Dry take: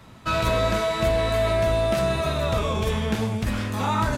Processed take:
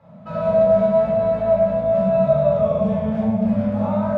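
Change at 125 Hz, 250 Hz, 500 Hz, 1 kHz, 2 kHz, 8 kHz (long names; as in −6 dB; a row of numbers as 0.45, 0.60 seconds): 0.0 dB, +7.5 dB, +7.5 dB, +0.5 dB, below −10 dB, below −25 dB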